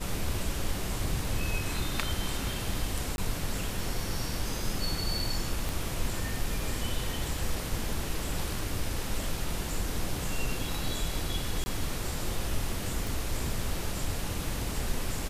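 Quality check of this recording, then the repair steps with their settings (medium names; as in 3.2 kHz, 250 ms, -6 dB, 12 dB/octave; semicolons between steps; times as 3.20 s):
3.16–3.18 s: dropout 21 ms
5.69 s: pop
11.64–11.66 s: dropout 20 ms
13.07 s: pop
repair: de-click; interpolate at 3.16 s, 21 ms; interpolate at 11.64 s, 20 ms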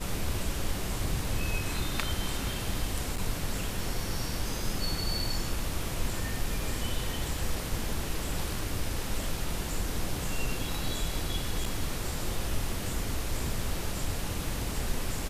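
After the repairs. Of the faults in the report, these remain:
5.69 s: pop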